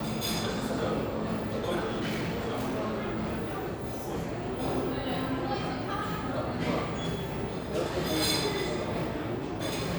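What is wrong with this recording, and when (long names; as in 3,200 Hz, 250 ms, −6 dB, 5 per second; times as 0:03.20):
0:01.79–0:04.55: clipping −28 dBFS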